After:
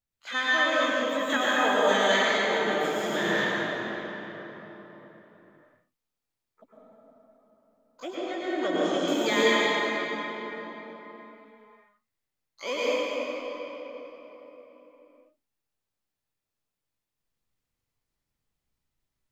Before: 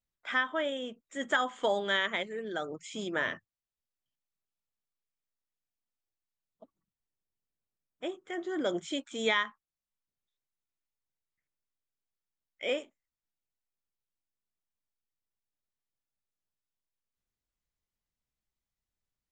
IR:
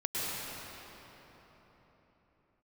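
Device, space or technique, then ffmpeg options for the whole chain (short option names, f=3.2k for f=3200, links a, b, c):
shimmer-style reverb: -filter_complex "[0:a]asplit=2[a][b];[b]asetrate=88200,aresample=44100,atempo=0.5,volume=-9dB[c];[a][c]amix=inputs=2:normalize=0[d];[1:a]atrim=start_sample=2205[e];[d][e]afir=irnorm=-1:irlink=0,asettb=1/sr,asplit=3[f][g][h];[f]atrim=end=8.154[i];[g]atrim=start=8.15:end=9.08,asetpts=PTS-STARTPTS,afade=t=in:d=0.004:c=qsin,afade=t=out:st=0.926:d=0.004:c=qsin,lowpass=6k[j];[h]atrim=start=9.076[k];[i][j]acrossfade=d=0.004:c1=hsin:c2=qsin[l];[l][k]acrossfade=d=0.004:c1=qsin:c2=hsin"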